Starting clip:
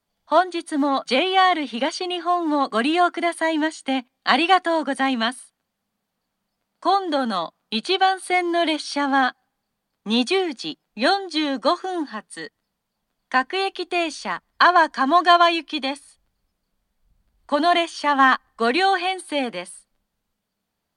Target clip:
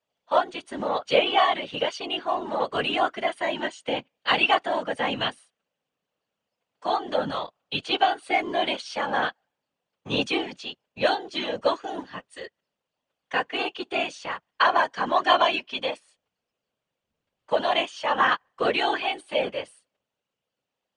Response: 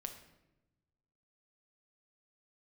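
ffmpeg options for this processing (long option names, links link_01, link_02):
-af "highpass=180,equalizer=frequency=290:width_type=q:width=4:gain=-8,equalizer=frequency=520:width_type=q:width=4:gain=9,equalizer=frequency=2800:width_type=q:width=4:gain=8,equalizer=frequency=4500:width_type=q:width=4:gain=-4,lowpass=frequency=7600:width=0.5412,lowpass=frequency=7600:width=1.3066,afftfilt=real='hypot(re,im)*cos(2*PI*random(0))':imag='hypot(re,im)*sin(2*PI*random(1))':win_size=512:overlap=0.75"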